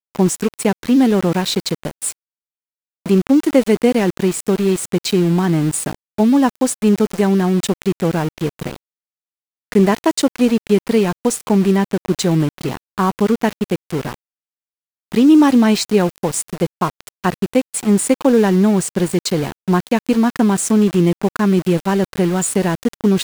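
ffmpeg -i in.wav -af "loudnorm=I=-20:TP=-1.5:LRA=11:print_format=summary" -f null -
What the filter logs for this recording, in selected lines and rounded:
Input Integrated:    -16.6 LUFS
Input True Peak:      -1.6 dBTP
Input LRA:             3.2 LU
Input Threshold:     -26.8 LUFS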